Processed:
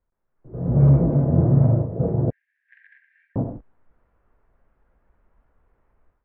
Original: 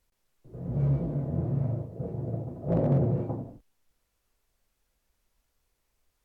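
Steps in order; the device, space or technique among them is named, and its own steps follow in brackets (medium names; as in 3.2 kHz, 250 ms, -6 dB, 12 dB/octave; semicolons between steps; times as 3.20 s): 2.30–3.36 s: Chebyshev high-pass 1.6 kHz, order 10; action camera in a waterproof case (low-pass 1.6 kHz 24 dB/octave; level rider gain up to 16 dB; trim -2.5 dB; AAC 48 kbps 48 kHz)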